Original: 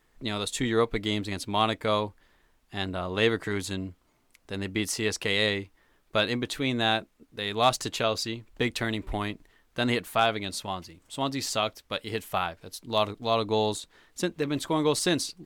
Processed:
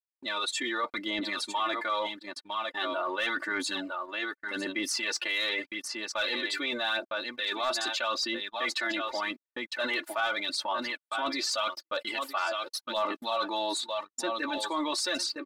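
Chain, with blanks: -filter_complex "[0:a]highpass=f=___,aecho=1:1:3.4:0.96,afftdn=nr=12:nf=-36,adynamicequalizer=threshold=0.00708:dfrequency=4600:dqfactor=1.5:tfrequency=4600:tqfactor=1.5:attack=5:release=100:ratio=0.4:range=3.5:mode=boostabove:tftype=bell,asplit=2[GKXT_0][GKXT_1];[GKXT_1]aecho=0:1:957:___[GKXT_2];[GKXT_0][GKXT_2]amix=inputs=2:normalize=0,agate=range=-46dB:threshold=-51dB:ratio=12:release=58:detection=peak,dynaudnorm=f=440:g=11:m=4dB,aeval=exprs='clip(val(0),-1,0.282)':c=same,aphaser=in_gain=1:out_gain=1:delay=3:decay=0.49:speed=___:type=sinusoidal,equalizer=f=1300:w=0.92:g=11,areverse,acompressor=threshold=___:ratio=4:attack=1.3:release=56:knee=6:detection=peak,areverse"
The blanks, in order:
400, 0.211, 0.84, -29dB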